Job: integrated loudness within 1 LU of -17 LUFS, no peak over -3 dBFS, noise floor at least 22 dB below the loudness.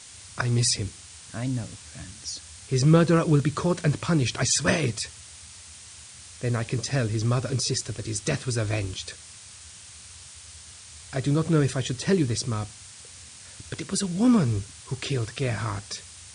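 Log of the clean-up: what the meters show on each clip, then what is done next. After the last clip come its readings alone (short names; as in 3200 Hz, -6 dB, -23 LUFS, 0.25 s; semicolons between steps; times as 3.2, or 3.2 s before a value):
noise floor -46 dBFS; noise floor target -48 dBFS; loudness -25.5 LUFS; peak -7.5 dBFS; loudness target -17.0 LUFS
-> denoiser 6 dB, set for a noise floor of -46 dBFS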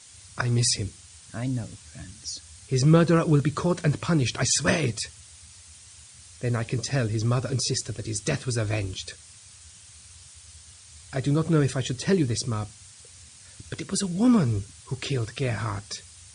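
noise floor -50 dBFS; loudness -25.5 LUFS; peak -7.5 dBFS; loudness target -17.0 LUFS
-> gain +8.5 dB; limiter -3 dBFS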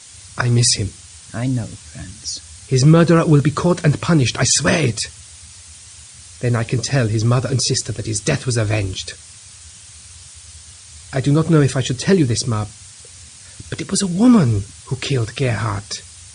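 loudness -17.5 LUFS; peak -3.0 dBFS; noise floor -41 dBFS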